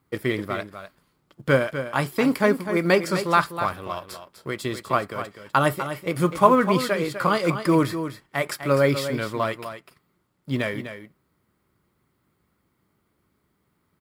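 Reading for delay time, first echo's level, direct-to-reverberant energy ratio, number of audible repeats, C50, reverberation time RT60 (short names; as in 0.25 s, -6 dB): 0.25 s, -10.0 dB, none, 1, none, none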